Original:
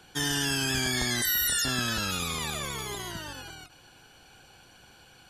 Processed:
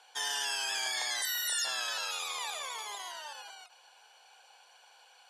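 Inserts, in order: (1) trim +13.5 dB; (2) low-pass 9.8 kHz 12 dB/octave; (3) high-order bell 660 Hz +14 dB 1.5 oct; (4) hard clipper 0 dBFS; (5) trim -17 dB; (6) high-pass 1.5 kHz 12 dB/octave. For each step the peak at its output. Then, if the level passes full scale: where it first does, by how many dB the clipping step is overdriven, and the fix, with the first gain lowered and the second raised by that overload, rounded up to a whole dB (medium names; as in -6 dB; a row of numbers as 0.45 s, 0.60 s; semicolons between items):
-3.0 dBFS, -3.0 dBFS, +4.5 dBFS, 0.0 dBFS, -17.0 dBFS, -20.5 dBFS; step 3, 4.5 dB; step 1 +8.5 dB, step 5 -12 dB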